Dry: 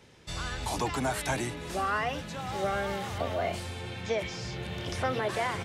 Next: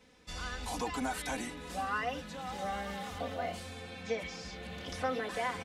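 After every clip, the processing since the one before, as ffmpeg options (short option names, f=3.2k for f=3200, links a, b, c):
-af "aecho=1:1:4:0.98,volume=-8dB"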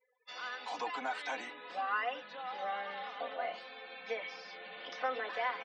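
-af "highpass=580,lowpass=3.9k,afftdn=nr=35:nf=-57,volume=1dB"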